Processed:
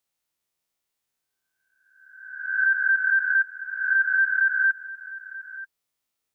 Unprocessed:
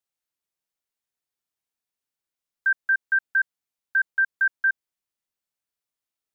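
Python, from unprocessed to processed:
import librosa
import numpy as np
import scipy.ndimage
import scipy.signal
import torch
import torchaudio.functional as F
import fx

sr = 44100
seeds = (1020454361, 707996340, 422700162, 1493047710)

y = fx.spec_swells(x, sr, rise_s=1.09)
y = fx.notch(y, sr, hz=1600.0, q=22.0)
y = y + 10.0 ** (-16.5 / 20.0) * np.pad(y, (int(934 * sr / 1000.0), 0))[:len(y)]
y = F.gain(torch.from_numpy(y), 4.0).numpy()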